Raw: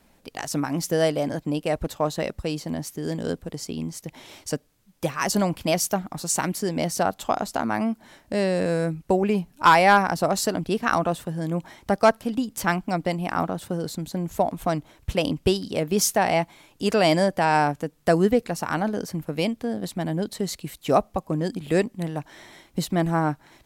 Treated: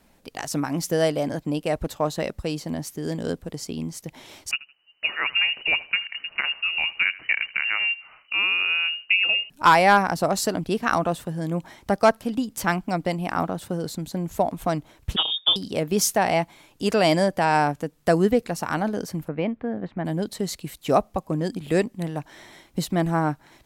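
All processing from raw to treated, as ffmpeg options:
-filter_complex "[0:a]asettb=1/sr,asplit=3[a][b][c];[a]atrim=end=4.514[d];[b]atrim=start=4.51:end=9.5,asetpts=PTS-STARTPTS,afade=t=in:d=0.004:c=qsin,afade=t=out:st=4.986:d=0.004:c=qsin,aecho=1:1:80|160:0.112|0.0314,atrim=end_sample=220059,lowpass=f=2.6k:t=q:w=0.5098,lowpass=f=2.6k:t=q:w=0.6013,lowpass=f=2.6k:t=q:w=0.9,lowpass=f=2.6k:t=q:w=2.563,afreqshift=-3000[e];[c]atrim=start=9.496[f];[d][e]acrossfade=d=0.004:c1=hsin:c2=qsin[g];[g][f]acrossfade=d=0.004:c1=qsin:c2=hsin,asettb=1/sr,asplit=3[h][i][j];[h]atrim=end=15.164[k];[i]atrim=start=15.16:end=15.56,asetpts=PTS-STARTPTS,afade=t=in:d=0.004:c=qsin,afade=t=out:st=0.396:d=0.004:c=qsin,aeval=exprs='val(0)*sin(2*PI*190*n/s)':c=same,lowpass=f=3.1k:t=q:w=0.5098,lowpass=f=3.1k:t=q:w=0.6013,lowpass=f=3.1k:t=q:w=0.9,lowpass=f=3.1k:t=q:w=2.563,afreqshift=-3700,aecho=1:1:6.3:0.84,atrim=end_sample=17640[l];[j]atrim=start=15.556[m];[k][l]acrossfade=d=0.004:c1=hsin:c2=qsin[n];[n][m]acrossfade=d=0.004:c1=qsin:c2=hsin,asettb=1/sr,asplit=3[o][p][q];[o]atrim=end=19.284[r];[p]atrim=start=19.28:end=20.05,asetpts=PTS-STARTPTS,afade=t=in:d=0.004:c=qsin,afade=t=out:st=0.766:d=0.004:c=qsin,lowpass=f=2k:w=0.5412,lowpass=f=2k:w=1.3066,aemphasis=mode=production:type=75fm[s];[q]atrim=start=20.046[t];[r][s]acrossfade=d=0.004:c1=hsin:c2=qsin[u];[u][t]acrossfade=d=0.004:c1=qsin:c2=hsin"

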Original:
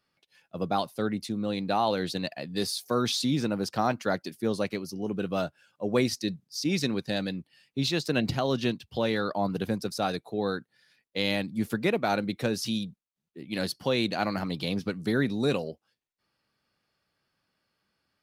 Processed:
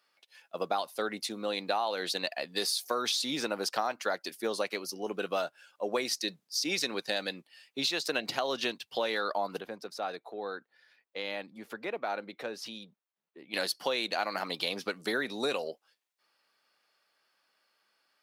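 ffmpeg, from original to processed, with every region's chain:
-filter_complex "[0:a]asettb=1/sr,asplit=3[a][b][c];[a]atrim=end=9.604[d];[b]atrim=start=9.6:end=13.54,asetpts=PTS-STARTPTS,afade=t=in:d=0.004:c=qsin,afade=t=out:st=3.936:d=0.004:c=qsin,equalizer=f=11k:t=o:w=2.4:g=-14.5,acompressor=threshold=-46dB:ratio=1.5:attack=3.2:release=140:knee=1:detection=peak[e];[c]atrim=start=13.536[f];[d][e]acrossfade=d=0.004:c1=hsin:c2=qsin[g];[g][f]acrossfade=d=0.004:c1=qsin:c2=hsin,highpass=550,acompressor=threshold=-32dB:ratio=6,volume=5dB"

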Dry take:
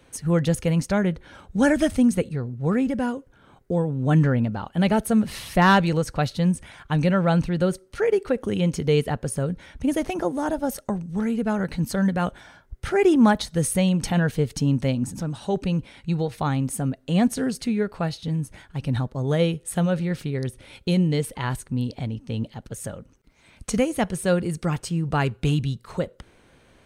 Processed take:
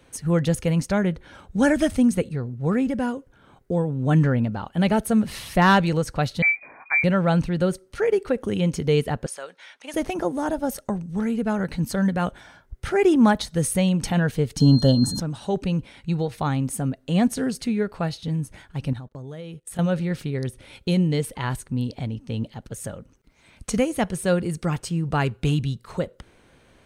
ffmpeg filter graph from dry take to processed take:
-filter_complex "[0:a]asettb=1/sr,asplit=3[a][b][c];[a]atrim=end=6.424[d];[b]atrim=start=6.42:end=7.04,asetpts=PTS-STARTPTS,afade=t=in:d=0.004:c=qsin,afade=t=out:st=0.616:d=0.004:c=qsin,lowpass=f=2.1k:t=q:w=0.5098,lowpass=f=2.1k:t=q:w=0.6013,lowpass=f=2.1k:t=q:w=0.9,lowpass=f=2.1k:t=q:w=2.563,afreqshift=-2500,asplit=2[e][f];[f]adelay=18,volume=-12.5dB[g];[e][g]amix=inputs=2:normalize=0,atrim=end_sample=27342[h];[c]atrim=start=7.036[i];[d][h]acrossfade=d=0.004:c1=hsin:c2=qsin[j];[j][i]acrossfade=d=0.004:c1=qsin:c2=hsin,asettb=1/sr,asplit=3[k][l][m];[k]atrim=end=9.264[n];[l]atrim=start=9.26:end=9.94,asetpts=PTS-STARTPTS,afade=t=in:d=0.004:c=qsin,afade=t=out:st=0.676:d=0.004:c=qsin,highpass=670,lowpass=3.8k,aemphasis=mode=production:type=riaa[o];[m]atrim=start=9.936[p];[n][o]acrossfade=d=0.004:c1=hsin:c2=qsin[q];[q][p]acrossfade=d=0.004:c1=qsin:c2=hsin,asettb=1/sr,asplit=3[r][s][t];[r]atrim=end=14.604[u];[s]atrim=start=14.6:end=15.2,asetpts=PTS-STARTPTS,afade=t=in:d=0.004:c=qsin,afade=t=out:st=0.596:d=0.004:c=qsin,asuperstop=centerf=2300:order=12:qfactor=2.1,acontrast=64,aeval=exprs='val(0)+0.0282*sin(2*PI*4200*n/s)':c=same[v];[t]atrim=start=15.196[w];[u][v]acrossfade=d=0.004:c1=hsin:c2=qsin[x];[x][w]acrossfade=d=0.004:c1=qsin:c2=hsin,asettb=1/sr,asplit=3[y][z][aa];[y]atrim=end=18.934[ab];[z]atrim=start=18.93:end=19.79,asetpts=PTS-STARTPTS,afade=t=in:d=0.004:c=qsin,afade=t=out:st=0.856:d=0.004:c=qsin,acompressor=threshold=-32dB:ratio=12:attack=3.2:release=140:knee=1:detection=peak,agate=range=-20dB:threshold=-44dB:ratio=16:release=100:detection=peak[ac];[aa]atrim=start=19.786[ad];[ab][ac]acrossfade=d=0.004:c1=hsin:c2=qsin[ae];[ae][ad]acrossfade=d=0.004:c1=qsin:c2=hsin"

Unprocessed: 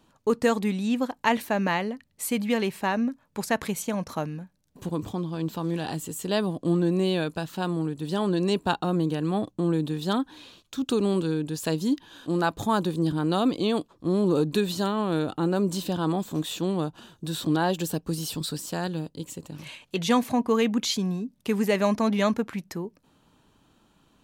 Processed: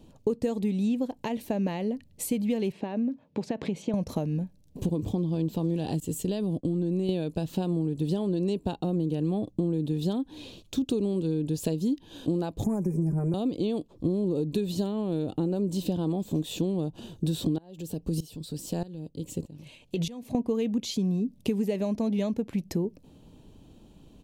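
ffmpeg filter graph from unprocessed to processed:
-filter_complex "[0:a]asettb=1/sr,asplit=3[a][b][c];[a]atrim=end=2.724[d];[b]atrim=start=2.72:end=3.94,asetpts=PTS-STARTPTS,afade=t=in:d=0.004:c=qsin,afade=t=out:st=1.216:d=0.004:c=qsin,acompressor=threshold=-31dB:ratio=5:attack=3.2:release=140:knee=1:detection=peak,highpass=160,lowpass=3.4k[e];[c]atrim=start=3.936[f];[d][e]acrossfade=d=0.004:c1=hsin:c2=qsin[g];[g][f]acrossfade=d=0.004:c1=qsin:c2=hsin,asettb=1/sr,asplit=3[h][i][j];[h]atrim=end=6.004[k];[i]atrim=start=6:end=7.09,asetpts=PTS-STARTPTS,afade=t=in:d=0.004:c=qsin,afade=t=out:st=1.086:d=0.004:c=qsin,equalizer=f=710:w=0.94:g=-3,agate=range=-33dB:threshold=-35dB:ratio=3:release=100:detection=peak,acompressor=threshold=-32dB:ratio=3:attack=3.2:release=140:knee=1:detection=peak[l];[j]atrim=start=7.086[m];[k][l]acrossfade=d=0.004:c1=hsin:c2=qsin[n];[n][m]acrossfade=d=0.004:c1=qsin:c2=hsin,asettb=1/sr,asplit=3[o][p][q];[o]atrim=end=12.644[r];[p]atrim=start=12.64:end=13.34,asetpts=PTS-STARTPTS,afade=t=in:d=0.004:c=qsin,afade=t=out:st=0.696:d=0.004:c=qsin,aecho=1:1:5:0.95,atrim=end_sample=30870,acrossover=split=130|3000[s][t][u];[t]acompressor=threshold=-23dB:ratio=3:attack=3.2:release=140:knee=2.83:detection=peak[v];[s][v][u]amix=inputs=3:normalize=0,asuperstop=centerf=3600:order=20:qfactor=1.3[w];[q]atrim=start=13.336[x];[r][w]acrossfade=d=0.004:c1=hsin:c2=qsin[y];[y][x]acrossfade=d=0.004:c1=qsin:c2=hsin,asettb=1/sr,asplit=3[z][aa][ab];[z]atrim=end=17.584[ac];[aa]atrim=start=17.58:end=20.35,asetpts=PTS-STARTPTS,afade=t=in:d=0.004:c=qsin,afade=t=out:st=2.766:d=0.004:c=qsin,acompressor=threshold=-30dB:ratio=4:attack=3.2:release=140:knee=1:detection=peak,aeval=exprs='val(0)*pow(10,-19*if(lt(mod(-1.6*n/s,1),2*abs(-1.6)/1000),1-mod(-1.6*n/s,1)/(2*abs(-1.6)/1000),(mod(-1.6*n/s,1)-2*abs(-1.6)/1000)/(1-2*abs(-1.6)/1000))/20)':c=same[ad];[ab]atrim=start=20.346[ae];[ac][ad]acrossfade=d=0.004:c1=hsin:c2=qsin[af];[af][ae]acrossfade=d=0.004:c1=qsin:c2=hsin,lowshelf=f=91:g=8,acompressor=threshold=-32dB:ratio=12,firequalizer=gain_entry='entry(500,0);entry(1300,-18);entry(2600,-7)':delay=0.05:min_phase=1,volume=8.5dB"

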